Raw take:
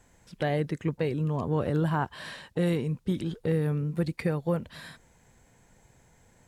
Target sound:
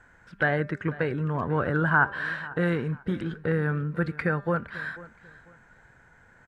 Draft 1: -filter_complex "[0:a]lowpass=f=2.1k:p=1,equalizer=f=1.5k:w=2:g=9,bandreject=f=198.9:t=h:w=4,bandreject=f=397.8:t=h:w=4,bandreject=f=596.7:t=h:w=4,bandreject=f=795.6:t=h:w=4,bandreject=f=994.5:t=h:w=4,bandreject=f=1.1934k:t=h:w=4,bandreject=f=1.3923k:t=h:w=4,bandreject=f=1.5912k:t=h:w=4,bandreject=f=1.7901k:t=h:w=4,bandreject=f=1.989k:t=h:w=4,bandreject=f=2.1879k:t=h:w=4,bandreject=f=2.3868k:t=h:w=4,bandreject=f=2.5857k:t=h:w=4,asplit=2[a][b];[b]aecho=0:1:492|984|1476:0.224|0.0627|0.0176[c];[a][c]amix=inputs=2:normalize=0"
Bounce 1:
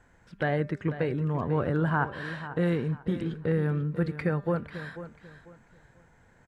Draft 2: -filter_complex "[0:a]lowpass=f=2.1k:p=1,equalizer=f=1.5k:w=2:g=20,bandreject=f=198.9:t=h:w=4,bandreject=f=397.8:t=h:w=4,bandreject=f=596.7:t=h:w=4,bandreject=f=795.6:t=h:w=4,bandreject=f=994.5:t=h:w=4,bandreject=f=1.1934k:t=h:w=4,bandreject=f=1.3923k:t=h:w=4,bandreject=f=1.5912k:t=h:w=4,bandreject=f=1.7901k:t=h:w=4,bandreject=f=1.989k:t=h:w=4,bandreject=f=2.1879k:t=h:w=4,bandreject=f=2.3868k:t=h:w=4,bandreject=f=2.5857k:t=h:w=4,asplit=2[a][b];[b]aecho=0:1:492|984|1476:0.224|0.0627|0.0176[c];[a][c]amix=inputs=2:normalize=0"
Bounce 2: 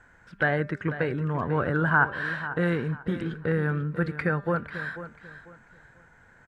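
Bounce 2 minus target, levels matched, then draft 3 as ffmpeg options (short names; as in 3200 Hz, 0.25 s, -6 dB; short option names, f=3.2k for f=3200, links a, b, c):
echo-to-direct +6 dB
-filter_complex "[0:a]lowpass=f=2.1k:p=1,equalizer=f=1.5k:w=2:g=20,bandreject=f=198.9:t=h:w=4,bandreject=f=397.8:t=h:w=4,bandreject=f=596.7:t=h:w=4,bandreject=f=795.6:t=h:w=4,bandreject=f=994.5:t=h:w=4,bandreject=f=1.1934k:t=h:w=4,bandreject=f=1.3923k:t=h:w=4,bandreject=f=1.5912k:t=h:w=4,bandreject=f=1.7901k:t=h:w=4,bandreject=f=1.989k:t=h:w=4,bandreject=f=2.1879k:t=h:w=4,bandreject=f=2.3868k:t=h:w=4,bandreject=f=2.5857k:t=h:w=4,asplit=2[a][b];[b]aecho=0:1:492|984:0.112|0.0314[c];[a][c]amix=inputs=2:normalize=0"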